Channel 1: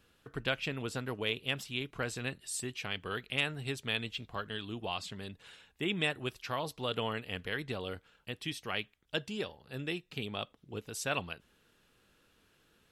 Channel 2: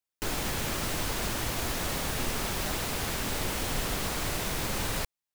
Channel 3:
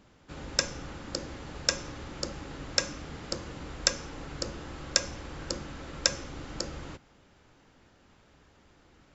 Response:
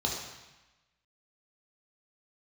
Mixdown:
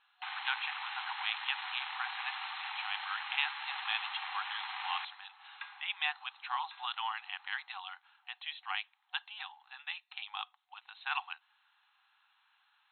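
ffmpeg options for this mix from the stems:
-filter_complex "[0:a]equalizer=f=900:w=1.6:g=5.5,volume=0.891,asplit=2[s0][s1];[1:a]aeval=exprs='abs(val(0))':c=same,volume=0.891,asplit=2[s2][s3];[s3]volume=0.133[s4];[2:a]asoftclip=type=tanh:threshold=0.15,adelay=650,volume=0.501,asplit=2[s5][s6];[s6]volume=0.15[s7];[s1]apad=whole_len=432105[s8];[s5][s8]sidechaincompress=threshold=0.00562:ratio=8:attack=24:release=724[s9];[3:a]atrim=start_sample=2205[s10];[s4][s7]amix=inputs=2:normalize=0[s11];[s11][s10]afir=irnorm=-1:irlink=0[s12];[s0][s2][s9][s12]amix=inputs=4:normalize=0,afftfilt=real='re*between(b*sr/4096,740,4200)':imag='im*between(b*sr/4096,740,4200)':win_size=4096:overlap=0.75"

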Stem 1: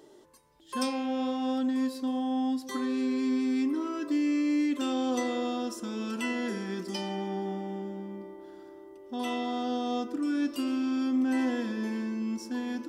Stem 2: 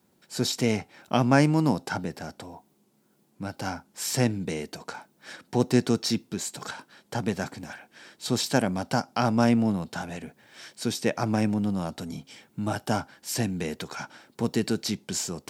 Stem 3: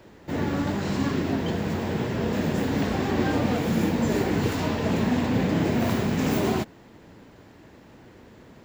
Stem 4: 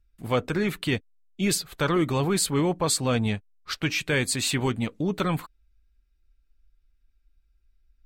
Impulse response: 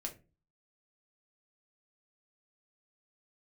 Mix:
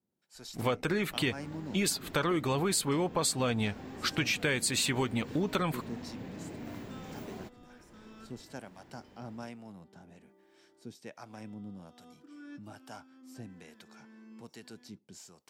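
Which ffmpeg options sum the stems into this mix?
-filter_complex "[0:a]adynamicequalizer=threshold=0.002:dfrequency=1500:dqfactor=1.5:tfrequency=1500:tqfactor=1.5:attack=5:release=100:ratio=0.375:range=3.5:mode=boostabove:tftype=bell,adelay=2100,volume=0.119[s0];[1:a]acrossover=split=600[s1][s2];[s1]aeval=exprs='val(0)*(1-0.7/2+0.7/2*cos(2*PI*1.2*n/s))':c=same[s3];[s2]aeval=exprs='val(0)*(1-0.7/2-0.7/2*cos(2*PI*1.2*n/s))':c=same[s4];[s3][s4]amix=inputs=2:normalize=0,volume=0.141,asplit=2[s5][s6];[2:a]acompressor=mode=upward:threshold=0.0398:ratio=2.5,adelay=850,volume=0.1[s7];[3:a]lowshelf=f=230:g=-6,adelay=350,volume=1.26[s8];[s6]apad=whole_len=660901[s9];[s0][s9]sidechaincompress=threshold=0.00158:ratio=8:attack=16:release=687[s10];[s10][s5][s7][s8]amix=inputs=4:normalize=0,acompressor=threshold=0.0447:ratio=4"

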